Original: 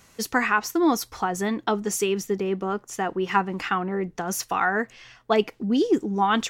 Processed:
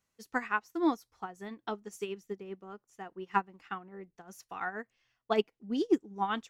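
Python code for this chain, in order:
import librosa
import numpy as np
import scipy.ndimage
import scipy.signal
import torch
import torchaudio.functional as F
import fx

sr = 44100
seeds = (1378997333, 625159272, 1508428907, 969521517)

y = fx.upward_expand(x, sr, threshold_db=-31.0, expansion=2.5)
y = y * librosa.db_to_amplitude(-4.0)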